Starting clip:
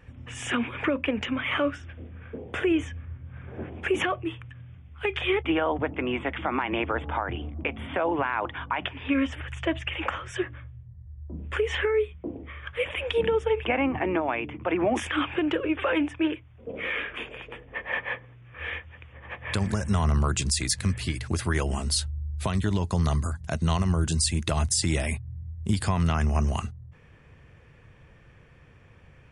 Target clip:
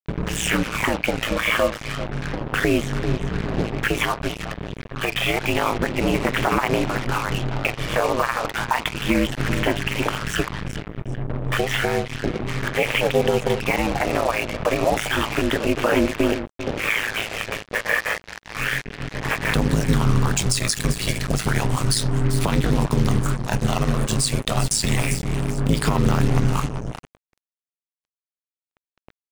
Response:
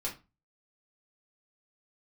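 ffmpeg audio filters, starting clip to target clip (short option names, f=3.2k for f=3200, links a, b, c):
-filter_complex "[0:a]tremolo=f=270:d=0.788,agate=range=-33dB:threshold=-46dB:ratio=3:detection=peak,asplit=2[a][b];[b]highpass=550[c];[1:a]atrim=start_sample=2205[d];[c][d]afir=irnorm=-1:irlink=0,volume=-13dB[e];[a][e]amix=inputs=2:normalize=0,acompressor=threshold=-47dB:ratio=2,aecho=1:1:393|786|1179:0.224|0.0493|0.0108,aphaser=in_gain=1:out_gain=1:delay=1.8:decay=0.43:speed=0.31:type=sinusoidal,aeval=exprs='val(0)*sin(2*PI*55*n/s)':c=same,acrusher=bits=7:mix=0:aa=0.5,alimiter=level_in=28dB:limit=-1dB:release=50:level=0:latency=1,volume=-6dB"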